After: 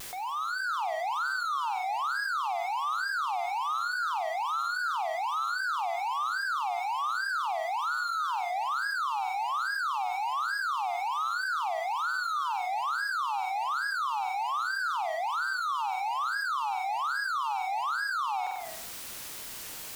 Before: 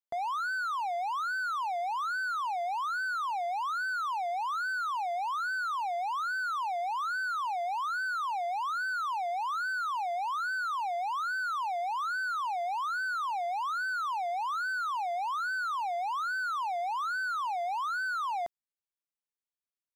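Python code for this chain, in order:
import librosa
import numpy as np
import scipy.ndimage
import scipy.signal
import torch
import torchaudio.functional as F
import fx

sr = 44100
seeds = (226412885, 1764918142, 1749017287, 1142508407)

p1 = fx.fade_in_head(x, sr, length_s=0.84)
p2 = scipy.signal.sosfilt(scipy.signal.butter(2, 890.0, 'highpass', fs=sr, output='sos'), p1)
p3 = p2 + 0.42 * np.pad(p2, (int(2.4 * sr / 1000.0), 0))[:len(p2)]
p4 = p3 + fx.room_flutter(p3, sr, wall_m=8.5, rt60_s=0.51, dry=0)
p5 = fx.dmg_noise_colour(p4, sr, seeds[0], colour='white', level_db=-68.0)
p6 = fx.wow_flutter(p5, sr, seeds[1], rate_hz=2.1, depth_cents=140.0)
y = fx.env_flatten(p6, sr, amount_pct=70)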